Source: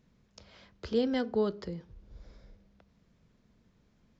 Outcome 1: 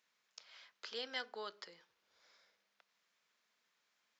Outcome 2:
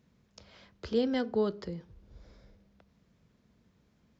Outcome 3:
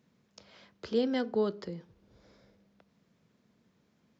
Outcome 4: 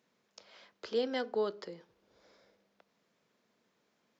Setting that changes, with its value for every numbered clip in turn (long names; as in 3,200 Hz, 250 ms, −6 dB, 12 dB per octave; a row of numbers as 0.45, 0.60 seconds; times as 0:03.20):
high-pass filter, corner frequency: 1,300, 48, 150, 420 Hertz